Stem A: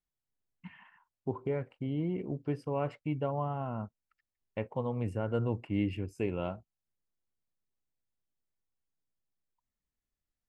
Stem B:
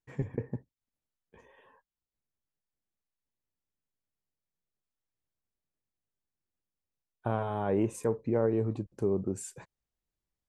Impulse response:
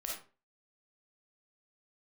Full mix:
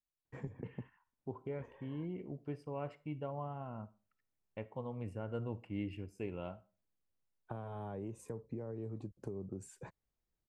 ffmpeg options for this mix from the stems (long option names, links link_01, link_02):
-filter_complex "[0:a]volume=-9.5dB,asplit=2[link_01][link_02];[link_02]volume=-15dB[link_03];[1:a]highshelf=frequency=2200:gain=-11,alimiter=limit=-22.5dB:level=0:latency=1:release=385,acrossover=split=160|3900[link_04][link_05][link_06];[link_04]acompressor=threshold=-50dB:ratio=4[link_07];[link_05]acompressor=threshold=-47dB:ratio=4[link_08];[link_06]acompressor=threshold=-57dB:ratio=4[link_09];[link_07][link_08][link_09]amix=inputs=3:normalize=0,adelay=250,volume=2dB[link_10];[2:a]atrim=start_sample=2205[link_11];[link_03][link_11]afir=irnorm=-1:irlink=0[link_12];[link_01][link_10][link_12]amix=inputs=3:normalize=0"